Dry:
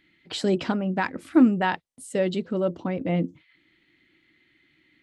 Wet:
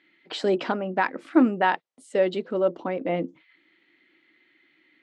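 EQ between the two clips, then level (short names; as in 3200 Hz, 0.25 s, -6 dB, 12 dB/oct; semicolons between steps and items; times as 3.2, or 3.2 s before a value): BPF 370–7000 Hz; high shelf 3000 Hz -9.5 dB; +4.5 dB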